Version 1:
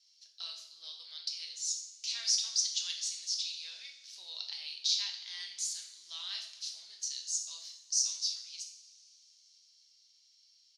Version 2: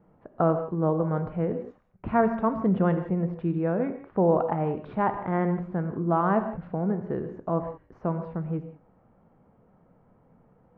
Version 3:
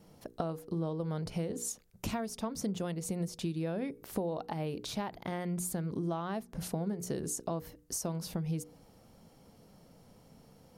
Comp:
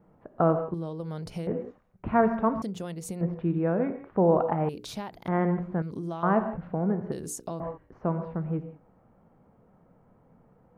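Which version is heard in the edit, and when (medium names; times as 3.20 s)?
2
0.74–1.47 s: from 3
2.62–3.21 s: from 3
4.69–5.28 s: from 3
5.82–6.23 s: from 3
7.12–7.60 s: from 3
not used: 1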